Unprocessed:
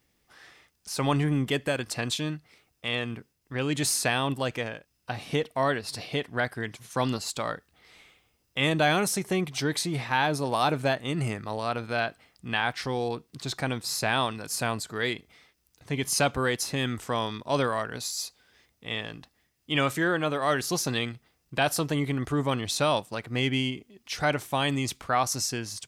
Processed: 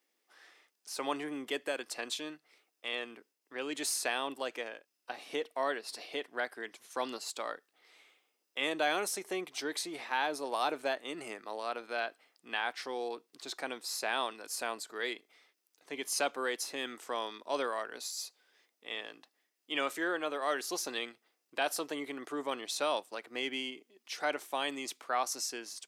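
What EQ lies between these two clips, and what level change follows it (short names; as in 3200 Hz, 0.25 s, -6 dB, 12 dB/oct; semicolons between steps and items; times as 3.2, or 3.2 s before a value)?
HPF 310 Hz 24 dB/oct; -7.0 dB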